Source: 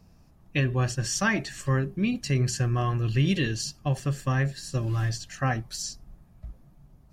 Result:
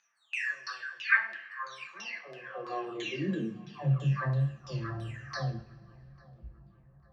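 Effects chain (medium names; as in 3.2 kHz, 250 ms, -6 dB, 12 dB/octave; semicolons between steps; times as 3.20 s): delay that grows with frequency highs early, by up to 726 ms; LFO low-pass saw down 3 Hz 770–4400 Hz; on a send: filtered feedback delay 846 ms, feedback 54%, low-pass 1.6 kHz, level -21.5 dB; on the sum: two-slope reverb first 0.48 s, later 2.1 s, from -20 dB, DRR 5 dB; high-pass sweep 1.6 kHz -> 73 Hz, 1.54–4.54 s; trim -8 dB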